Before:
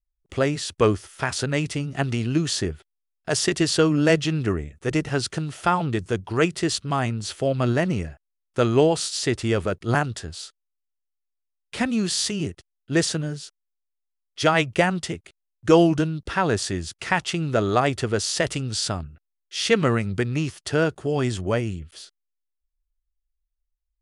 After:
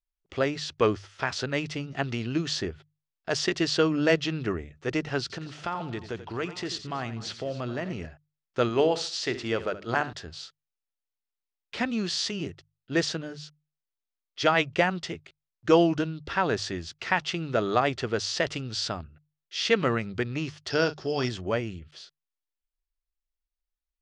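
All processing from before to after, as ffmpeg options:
-filter_complex "[0:a]asettb=1/sr,asplit=3[a][b][c];[a]atrim=end=5.214[d];[b]atrim=start=5.21:end=8.06,asetpts=PTS-STARTPTS,afade=t=in:d=0.004:c=qsin,afade=t=out:st=2.846:d=0.004:c=qsin,acompressor=threshold=-25dB:ratio=3:attack=3.2:release=140:knee=1:detection=peak,aecho=1:1:87|247|825:0.237|0.1|0.112,atrim=end_sample=125685[e];[c]atrim=start=8.056[f];[d][e]acrossfade=d=0.004:c1=hsin:c2=qsin[g];[g][f]acrossfade=d=0.004:c1=qsin:c2=hsin,asettb=1/sr,asplit=3[h][i][j];[h]atrim=end=8.694[k];[i]atrim=start=8.69:end=10.13,asetpts=PTS-STARTPTS,afade=t=in:d=0.004:c=qsin,afade=t=out:st=1.436:d=0.004:c=qsin,lowshelf=f=150:g=-7.5,bandreject=f=50:t=h:w=6,bandreject=f=100:t=h:w=6,bandreject=f=150:t=h:w=6,bandreject=f=200:t=h:w=6,bandreject=f=250:t=h:w=6,bandreject=f=300:t=h:w=6,bandreject=f=350:t=h:w=6,bandreject=f=400:t=h:w=6,aecho=1:1:71|142|213:0.188|0.0509|0.0137,atrim=end_sample=63504[l];[j]atrim=start=10.126[m];[k][l]acrossfade=d=0.004:c1=hsin:c2=qsin[n];[n][m]acrossfade=d=0.004:c1=qsin:c2=hsin,asettb=1/sr,asplit=3[o][p][q];[o]atrim=end=20.704[r];[p]atrim=start=20.7:end=21.29,asetpts=PTS-STARTPTS,afade=t=in:d=0.004:c=qsin,afade=t=out:st=0.586:d=0.004:c=qsin,lowpass=f=5.3k:t=q:w=13,asplit=2[s][t];[t]adelay=39,volume=-13dB[u];[s][u]amix=inputs=2:normalize=0,atrim=end_sample=26019[v];[q]atrim=start=21.286[w];[r][v]acrossfade=d=0.004:c1=hsin:c2=qsin[x];[x][w]acrossfade=d=0.004:c1=qsin:c2=hsin,lowpass=f=5.7k:w=0.5412,lowpass=f=5.7k:w=1.3066,lowshelf=f=240:g=-6.5,bandreject=f=50:t=h:w=6,bandreject=f=100:t=h:w=6,bandreject=f=150:t=h:w=6,volume=-2.5dB"

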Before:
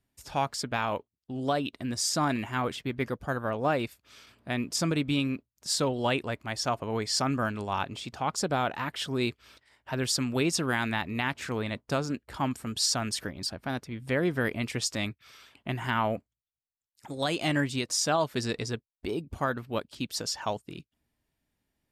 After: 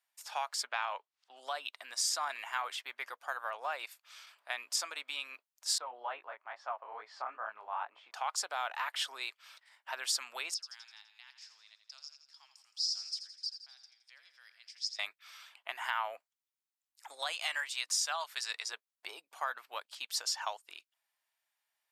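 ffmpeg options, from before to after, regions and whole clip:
-filter_complex "[0:a]asettb=1/sr,asplit=3[a][b][c];[a]atrim=end=0.674[d];[b]atrim=start=0.67:end=1.37,asetpts=PTS-STARTPTS,afade=t=in:d=0.004:c=qsin,afade=t=out:st=0.696:d=0.004:c=qsin,lowpass=5.3k,equalizer=f=100:t=o:w=0.94:g=-13.5,acompressor=mode=upward:threshold=-52dB:ratio=2.5:attack=3.2:release=140:knee=2.83:detection=peak[e];[c]atrim=start=1.366[f];[d][e]acrossfade=d=0.004:c1=hsin:c2=qsin[g];[g][f]acrossfade=d=0.004:c1=qsin:c2=hsin,asettb=1/sr,asplit=3[h][i][j];[h]atrim=end=5.784[k];[i]atrim=start=5.78:end=8.14,asetpts=PTS-STARTPTS,afade=t=in:d=0.004:c=qsin,afade=t=out:st=2.356:d=0.004:c=qsin,lowpass=1.3k,flanger=delay=18:depth=7:speed=2.3[l];[j]atrim=start=8.136[m];[k][l]acrossfade=d=0.004:c1=hsin:c2=qsin[n];[n][m]acrossfade=d=0.004:c1=qsin:c2=hsin,asettb=1/sr,asplit=3[o][p][q];[o]atrim=end=10.544[r];[p]atrim=start=10.54:end=14.99,asetpts=PTS-STARTPTS,afade=t=in:d=0.004:c=qsin,afade=t=out:st=4.446:d=0.004:c=qsin,bandpass=f=5.1k:t=q:w=8.6,aecho=1:1:84|168|252|336|420|504:0.316|0.177|0.0992|0.0555|0.0311|0.0174,atrim=end_sample=196245[s];[q]atrim=start=14.986[t];[r][s]acrossfade=d=0.004:c1=hsin:c2=qsin[u];[u][t]acrossfade=d=0.004:c1=qsin:c2=hsin,asettb=1/sr,asplit=3[v][w][x];[v]atrim=end=17.324[y];[w]atrim=start=17.32:end=18.66,asetpts=PTS-STARTPTS,afade=t=in:d=0.004:c=qsin,afade=t=out:st=1.336:d=0.004:c=qsin,highpass=f=1.3k:p=1,aeval=exprs='val(0)+0.00355*(sin(2*PI*60*n/s)+sin(2*PI*2*60*n/s)/2+sin(2*PI*3*60*n/s)/3+sin(2*PI*4*60*n/s)/4+sin(2*PI*5*60*n/s)/5)':c=same[z];[x]atrim=start=18.656[aa];[y][z]acrossfade=d=0.004:c1=hsin:c2=qsin[ab];[ab][aa]acrossfade=d=0.004:c1=qsin:c2=hsin,acompressor=threshold=-29dB:ratio=3,highpass=f=790:w=0.5412,highpass=f=790:w=1.3066"

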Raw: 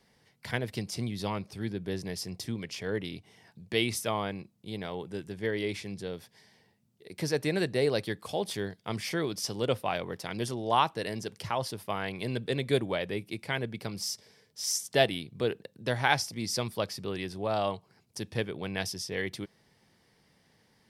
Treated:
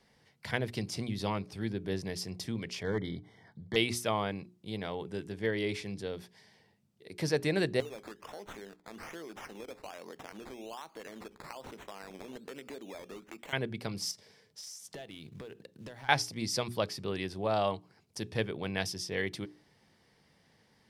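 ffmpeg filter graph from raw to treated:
-filter_complex "[0:a]asettb=1/sr,asplit=3[a][b][c];[a]atrim=end=2.834[d];[b]atrim=start=2.83:end=3.76,asetpts=PTS-STARTPTS,afade=t=in:d=0.004:c=qsin,afade=t=out:st=0.926:d=0.004:c=qsin,bass=f=250:g=4,treble=f=4k:g=-10,volume=25dB,asoftclip=hard,volume=-25dB,asuperstop=centerf=2600:order=20:qfactor=3.5[e];[c]atrim=start=3.756[f];[d][e]acrossfade=d=0.004:c1=hsin:c2=qsin[g];[g][f]acrossfade=d=0.004:c1=qsin:c2=hsin,asettb=1/sr,asplit=3[h][i][j];[h]atrim=end=7.804[k];[i]atrim=start=7.8:end=13.53,asetpts=PTS-STARTPTS,afade=t=in:d=0.004:c=qsin,afade=t=out:st=5.726:d=0.004:c=qsin,highpass=f=210:w=0.5412,highpass=f=210:w=1.3066,acompressor=threshold=-42dB:ratio=5:attack=3.2:release=140:knee=1:detection=peak,acrusher=samples=12:mix=1:aa=0.000001:lfo=1:lforange=7.2:lforate=1.2[l];[j]atrim=start=13.526[m];[k][l]acrossfade=d=0.004:c1=hsin:c2=qsin[n];[n][m]acrossfade=d=0.004:c1=qsin:c2=hsin,asettb=1/sr,asplit=3[o][p][q];[o]atrim=end=14.114[r];[p]atrim=start=14.11:end=16.09,asetpts=PTS-STARTPTS,afade=t=in:d=0.004:c=qsin,afade=t=out:st=1.976:d=0.004:c=qsin,acrusher=bits=6:mode=log:mix=0:aa=0.000001,acompressor=threshold=-40dB:ratio=16:attack=3.2:release=140:knee=1:detection=peak,asoftclip=type=hard:threshold=-37.5dB[s];[q]atrim=start=16.086[t];[r][s]acrossfade=d=0.004:c1=hsin:c2=qsin[u];[u][t]acrossfade=d=0.004:c1=qsin:c2=hsin,highshelf=f=10k:g=-7.5,bandreject=f=60:t=h:w=6,bandreject=f=120:t=h:w=6,bandreject=f=180:t=h:w=6,bandreject=f=240:t=h:w=6,bandreject=f=300:t=h:w=6,bandreject=f=360:t=h:w=6,bandreject=f=420:t=h:w=6"

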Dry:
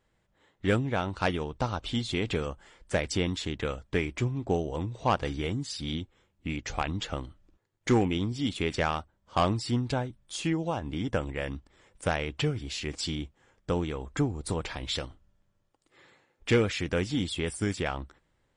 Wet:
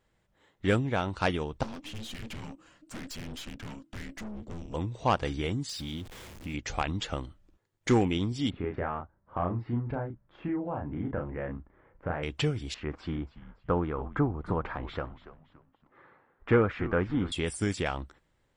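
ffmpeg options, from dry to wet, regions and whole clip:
-filter_complex "[0:a]asettb=1/sr,asplit=3[a][b][c];[a]atrim=end=1.634[d];[b]atrim=start=1.63:end=4.74,asetpts=PTS-STARTPTS,afade=t=in:d=0.004:c=qsin,afade=t=out:st=3.106:d=0.004:c=qsin,afreqshift=-340,aeval=exprs='(tanh(79.4*val(0)+0.65)-tanh(0.65))/79.4':c=same[e];[c]atrim=start=4.736[f];[d][e]acrossfade=d=0.004:c1=hsin:c2=qsin[g];[g][f]acrossfade=d=0.004:c1=qsin:c2=hsin,asettb=1/sr,asplit=3[h][i][j];[h]atrim=end=5.694[k];[i]atrim=start=5.69:end=6.54,asetpts=PTS-STARTPTS,afade=t=in:d=0.004:c=qsin,afade=t=out:st=0.846:d=0.004:c=qsin,aeval=exprs='val(0)+0.5*0.00891*sgn(val(0))':c=same,acompressor=threshold=-37dB:ratio=2:attack=3.2:release=140:knee=1:detection=peak[l];[j]atrim=start=6.536[m];[k][l]acrossfade=d=0.004:c1=hsin:c2=qsin[n];[n][m]acrossfade=d=0.004:c1=qsin:c2=hsin,asettb=1/sr,asplit=3[o][p][q];[o]atrim=end=8.504[r];[p]atrim=start=8.5:end=12.23,asetpts=PTS-STARTPTS,afade=t=in:d=0.004:c=qsin,afade=t=out:st=3.726:d=0.004:c=qsin,lowpass=f=1.7k:w=0.5412,lowpass=f=1.7k:w=1.3066,acompressor=threshold=-32dB:ratio=2:attack=3.2:release=140:knee=1:detection=peak,asplit=2[s][t];[t]adelay=34,volume=-4dB[u];[s][u]amix=inputs=2:normalize=0,atrim=end_sample=164493[v];[q]atrim=start=12.226[w];[r][v]acrossfade=d=0.004:c1=hsin:c2=qsin[x];[x][w]acrossfade=d=0.004:c1=qsin:c2=hsin,asettb=1/sr,asplit=3[y][z][aa];[y]atrim=end=12.744[ab];[z]atrim=start=12.74:end=17.32,asetpts=PTS-STARTPTS,afade=t=in:d=0.004:c=qsin,afade=t=out:st=4.576:d=0.004:c=qsin,lowpass=f=1.3k:t=q:w=2.1,asplit=4[ac][ad][ae][af];[ad]adelay=283,afreqshift=-110,volume=-15.5dB[ag];[ae]adelay=566,afreqshift=-220,volume=-24.4dB[ah];[af]adelay=849,afreqshift=-330,volume=-33.2dB[ai];[ac][ag][ah][ai]amix=inputs=4:normalize=0,atrim=end_sample=201978[aj];[aa]atrim=start=17.316[ak];[ab][aj]acrossfade=d=0.004:c1=hsin:c2=qsin[al];[al][ak]acrossfade=d=0.004:c1=qsin:c2=hsin"

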